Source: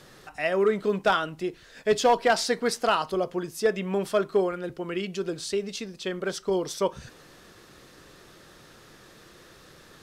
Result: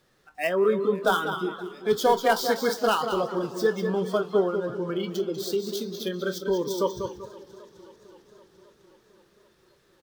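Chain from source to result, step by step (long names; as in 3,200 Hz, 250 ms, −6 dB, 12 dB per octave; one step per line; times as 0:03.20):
gap after every zero crossing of 0.055 ms
in parallel at −1.5 dB: downward compressor, threshold −33 dBFS, peak gain reduction 15.5 dB
on the sum: double-tracking delay 23 ms −12 dB
on a send: repeating echo 194 ms, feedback 42%, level −7 dB
on the sum: noise reduction from a noise print of the clip's start 18 dB
feedback echo with a swinging delay time 262 ms, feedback 78%, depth 151 cents, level −21 dB
level −2 dB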